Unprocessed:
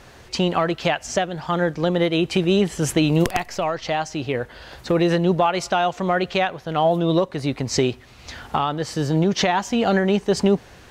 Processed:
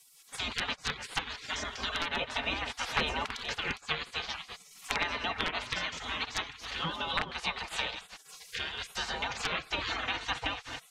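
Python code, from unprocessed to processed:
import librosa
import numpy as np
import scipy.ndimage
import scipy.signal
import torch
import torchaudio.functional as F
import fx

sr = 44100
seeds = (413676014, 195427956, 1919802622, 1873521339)

p1 = fx.reverse_delay(x, sr, ms=272, wet_db=-11.0)
p2 = fx.highpass(p1, sr, hz=75.0, slope=6)
p3 = p2 + 0.66 * np.pad(p2, (int(3.3 * sr / 1000.0), 0))[:len(p2)]
p4 = (np.mod(10.0 ** (6.5 / 20.0) * p3 + 1.0, 2.0) - 1.0) / 10.0 ** (6.5 / 20.0)
p5 = p3 + (p4 * 10.0 ** (-8.0 / 20.0))
p6 = fx.spec_gate(p5, sr, threshold_db=-25, keep='weak')
p7 = fx.env_lowpass_down(p6, sr, base_hz=2400.0, full_db=-28.0)
y = p7 * 10.0 ** (1.5 / 20.0)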